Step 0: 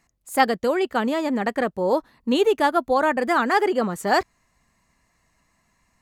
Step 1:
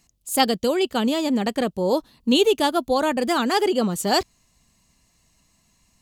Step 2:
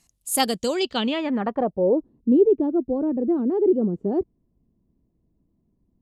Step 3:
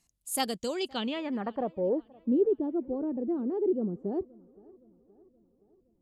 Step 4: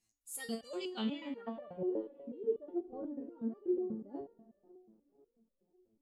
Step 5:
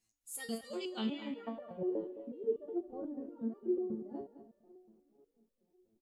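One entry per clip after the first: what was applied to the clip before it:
EQ curve 190 Hz 0 dB, 1900 Hz -10 dB, 3000 Hz +4 dB; gain +4 dB
low-pass sweep 11000 Hz -> 360 Hz, 0.49–2.01; gain -3 dB
tape echo 0.52 s, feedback 58%, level -23.5 dB, low-pass 2300 Hz; gain -8.5 dB
spring tank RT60 1.5 s, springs 41 ms, chirp 65 ms, DRR 12 dB; stepped resonator 8.2 Hz 110–590 Hz; gain +2.5 dB
echo 0.214 s -13 dB

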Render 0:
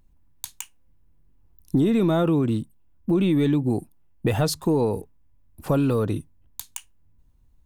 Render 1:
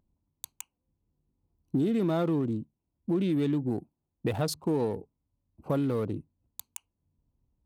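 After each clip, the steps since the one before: Wiener smoothing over 25 samples; HPF 120 Hz 6 dB/oct; gain -5.5 dB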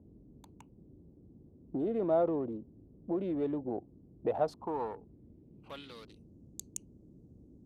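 band-pass sweep 610 Hz -> 6600 Hz, 4.32–6.37; band noise 38–330 Hz -62 dBFS; gain +5 dB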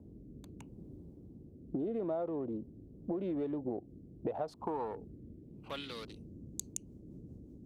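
rotary speaker horn 0.8 Hz, later 5.5 Hz, at 6.22; compressor 10:1, threshold -40 dBFS, peak gain reduction 16 dB; gain +7 dB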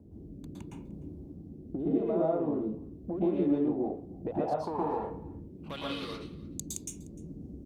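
echo 0.301 s -22.5 dB; reverb RT60 0.40 s, pre-delay 0.109 s, DRR -4.5 dB

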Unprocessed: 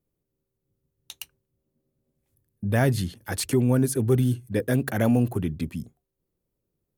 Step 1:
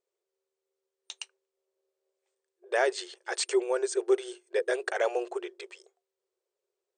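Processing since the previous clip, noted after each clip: FFT band-pass 350–8900 Hz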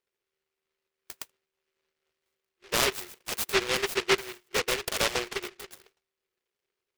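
noise-modulated delay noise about 2000 Hz, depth 0.36 ms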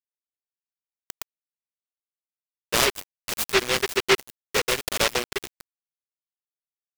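sample gate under -31.5 dBFS; gain +4.5 dB

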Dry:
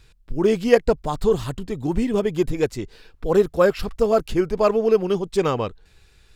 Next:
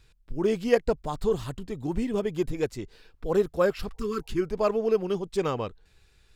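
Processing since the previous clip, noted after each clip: spectral repair 3.97–4.4, 440–950 Hz before; gain -6.5 dB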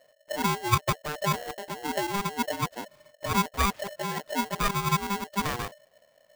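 median filter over 15 samples; polarity switched at an audio rate 600 Hz; gain -2 dB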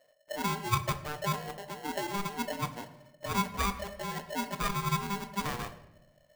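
shoebox room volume 270 m³, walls mixed, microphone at 0.4 m; gain -5.5 dB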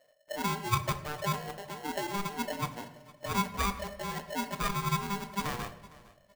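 feedback echo 0.459 s, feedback 20%, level -21 dB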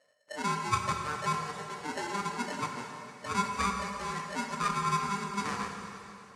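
speaker cabinet 100–9200 Hz, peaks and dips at 140 Hz -9 dB, 330 Hz -4 dB, 660 Hz -9 dB, 1300 Hz +5 dB, 3300 Hz -6 dB; plate-style reverb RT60 2.9 s, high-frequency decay 0.95×, DRR 3.5 dB

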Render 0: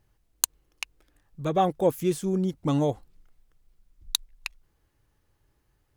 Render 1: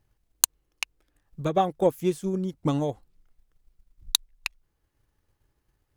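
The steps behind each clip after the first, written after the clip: transient shaper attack +7 dB, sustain -2 dB; gain -3.5 dB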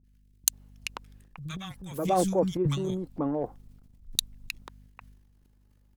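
three bands offset in time lows, highs, mids 40/530 ms, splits 170/1500 Hz; hum 50 Hz, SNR 30 dB; transient shaper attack -2 dB, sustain +11 dB; gain -2 dB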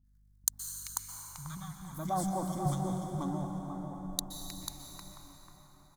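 fixed phaser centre 1100 Hz, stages 4; on a send: echo 0.492 s -6.5 dB; on the sum: plate-style reverb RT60 5 s, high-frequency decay 0.6×, pre-delay 0.11 s, DRR 3 dB; gain -4 dB

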